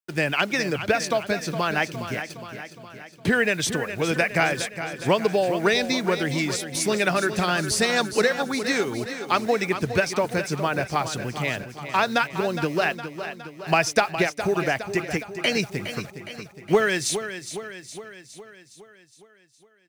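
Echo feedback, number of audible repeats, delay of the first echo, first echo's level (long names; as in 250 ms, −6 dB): 57%, 6, 413 ms, −10.5 dB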